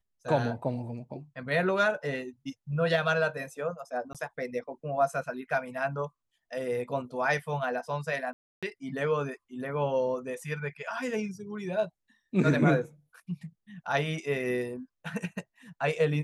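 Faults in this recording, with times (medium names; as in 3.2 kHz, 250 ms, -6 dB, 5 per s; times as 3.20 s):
4.13–4.15 s: dropout 17 ms
8.33–8.63 s: dropout 296 ms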